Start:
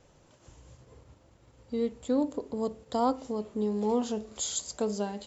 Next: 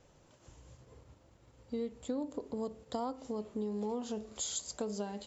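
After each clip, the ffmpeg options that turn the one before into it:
-af "acompressor=threshold=-30dB:ratio=6,volume=-3dB"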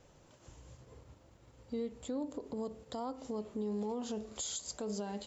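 -af "alimiter=level_in=7dB:limit=-24dB:level=0:latency=1:release=92,volume=-7dB,volume=1.5dB"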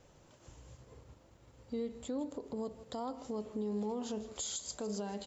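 -af "aecho=1:1:159:0.178"

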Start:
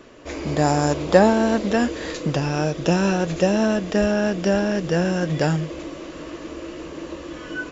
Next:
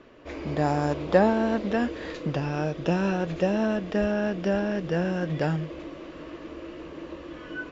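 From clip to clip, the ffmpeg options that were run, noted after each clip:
-af "lowpass=3.6k,volume=-5.5dB"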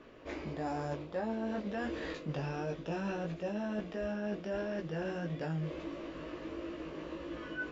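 -af "flanger=delay=17.5:depth=2:speed=1.5,areverse,acompressor=threshold=-34dB:ratio=6,areverse"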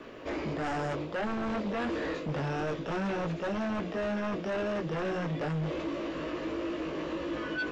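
-filter_complex "[0:a]lowshelf=f=110:g=-7,acrossover=split=300|1000|1800[a][b][c][d];[d]alimiter=level_in=24.5dB:limit=-24dB:level=0:latency=1,volume=-24.5dB[e];[a][b][c][e]amix=inputs=4:normalize=0,aeval=exprs='0.0299*sin(PI/2*1.58*val(0)/0.0299)':c=same,volume=2dB"

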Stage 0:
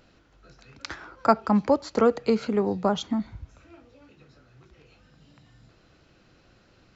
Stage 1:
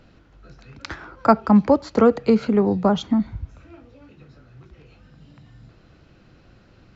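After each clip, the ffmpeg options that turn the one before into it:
-filter_complex "[0:a]highshelf=f=5.5k:g=-9.5,acrossover=split=250[a][b];[a]acontrast=29[c];[c][b]amix=inputs=2:normalize=0,volume=4dB"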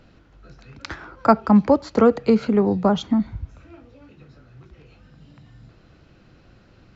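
-af anull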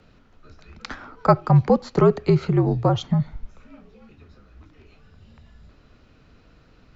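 -af "afreqshift=-62,volume=-1dB"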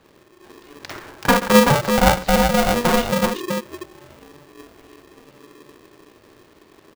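-filter_complex "[0:a]asplit=2[a][b];[b]aecho=0:1:47|48|133|134|380:0.398|0.631|0.112|0.178|0.668[c];[a][c]amix=inputs=2:normalize=0,aeval=exprs='val(0)*sgn(sin(2*PI*360*n/s))':c=same,volume=-1dB"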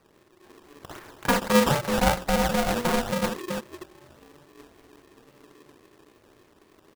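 -af "acrusher=samples=12:mix=1:aa=0.000001:lfo=1:lforange=19.2:lforate=3.7,volume=-7dB"

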